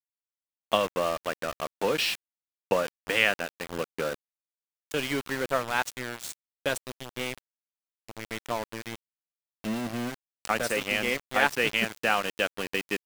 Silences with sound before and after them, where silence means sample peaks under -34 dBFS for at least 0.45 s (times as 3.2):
2.15–2.71
4.14–4.91
7.38–8.09
8.96–9.64